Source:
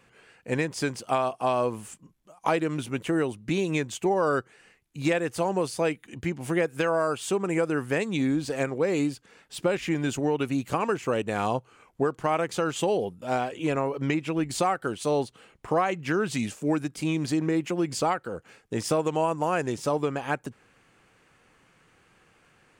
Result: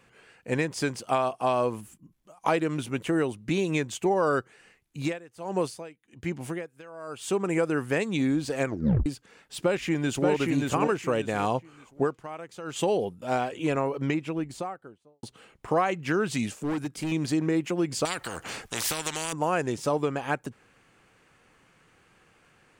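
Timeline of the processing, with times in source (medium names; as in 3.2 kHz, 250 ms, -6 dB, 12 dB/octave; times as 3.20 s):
1.81–2.12 s: time-frequency box 370–10000 Hz -10 dB
5.04–7.42 s: logarithmic tremolo 1.8 Hz -> 0.81 Hz, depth 21 dB
8.66 s: tape stop 0.40 s
9.56–10.29 s: echo throw 580 ms, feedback 25%, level -2.5 dB
12.04–12.81 s: dip -13.5 dB, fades 0.18 s
13.85–15.23 s: studio fade out
16.56–17.12 s: overload inside the chain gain 26 dB
18.05–19.33 s: spectrum-flattening compressor 4:1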